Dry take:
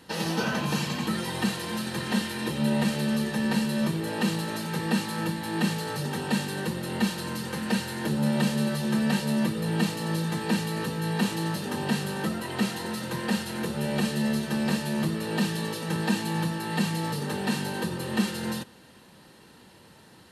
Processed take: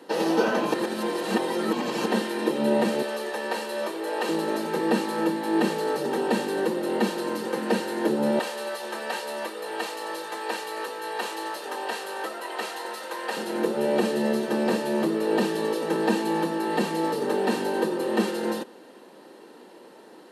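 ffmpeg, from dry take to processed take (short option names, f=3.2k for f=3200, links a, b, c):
-filter_complex "[0:a]asettb=1/sr,asplit=3[a][b][c];[a]atrim=end=3.024[d];[b]atrim=start=3.02:end=4.29,asetpts=PTS-STARTPTS,afade=t=in:d=0.004:c=qsin,afade=t=out:st=1.266:d=0.004:c=qsin,highpass=570[e];[c]atrim=start=4.286[f];[d][e]acrossfade=d=0.004:c1=hsin:c2=qsin[g];[g][f]acrossfade=d=0.004:c1=qsin:c2=hsin,asettb=1/sr,asplit=3[h][i][j];[h]atrim=end=8.394[k];[i]atrim=start=8.39:end=13.37,asetpts=PTS-STARTPTS,afade=t=in:d=0.004:c=qsin,afade=t=out:st=4.976:d=0.004:c=qsin,highpass=770[l];[j]atrim=start=13.366[m];[k][l]acrossfade=d=0.004:c1=hsin:c2=qsin[n];[n][m]acrossfade=d=0.004:c1=qsin:c2=hsin,asplit=3[o][p][q];[o]atrim=end=0.742[r];[p]atrim=start=0.738:end=2.062,asetpts=PTS-STARTPTS,areverse[s];[q]atrim=start=2.058[t];[r][s]acrossfade=d=0.004:c1=hsin:c2=hsin[u];[u][t]acrossfade=d=0.004:c1=hsin:c2=hsin,highpass=f=330:w=0.5412,highpass=f=330:w=1.3066,tiltshelf=f=860:g=9,volume=6dB"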